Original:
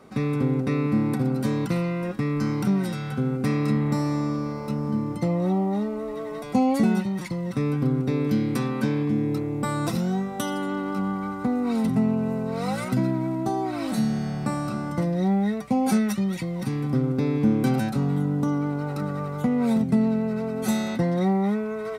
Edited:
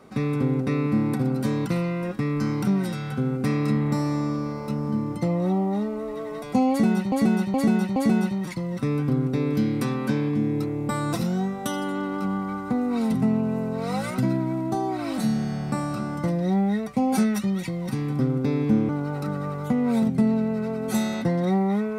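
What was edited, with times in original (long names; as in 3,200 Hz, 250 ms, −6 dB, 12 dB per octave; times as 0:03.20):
0:06.70–0:07.12: repeat, 4 plays
0:17.63–0:18.63: remove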